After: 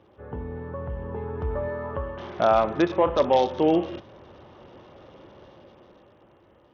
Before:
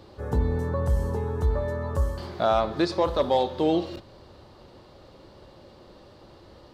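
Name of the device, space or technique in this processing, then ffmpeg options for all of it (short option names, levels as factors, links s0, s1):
Bluetooth headset: -filter_complex "[0:a]asettb=1/sr,asplit=3[s0][s1][s2];[s0]atrim=end=1.684[s3];[s1]atrim=start=1.68:end=2.38,asetpts=PTS-STARTPTS,afade=t=in:d=0.004:c=qsin,afade=t=out:st=0.696:d=0.004:c=qsin,lowshelf=f=210:g=-7[s4];[s2]atrim=start=2.376[s5];[s3][s4]acrossfade=d=0.004:c1=hsin:c2=qsin[s6];[s6][s5]acrossfade=d=0.004:c1=qsin:c2=hsin,highpass=f=120:p=1,dynaudnorm=f=220:g=13:m=3.98,aresample=8000,aresample=44100,volume=0.473" -ar 48000 -c:a sbc -b:a 64k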